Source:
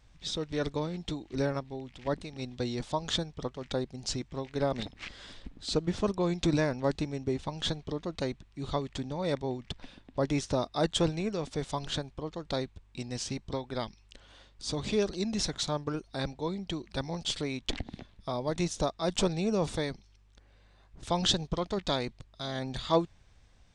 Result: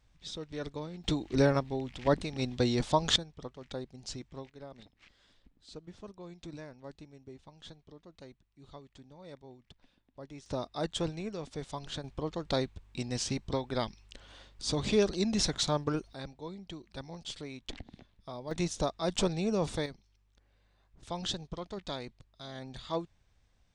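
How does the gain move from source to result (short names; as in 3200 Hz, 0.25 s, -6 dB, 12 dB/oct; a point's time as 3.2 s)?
-7 dB
from 1.04 s +5 dB
from 3.16 s -7.5 dB
from 4.5 s -18 dB
from 10.46 s -6 dB
from 12.04 s +2 dB
from 16.13 s -9 dB
from 18.51 s -1.5 dB
from 19.86 s -8.5 dB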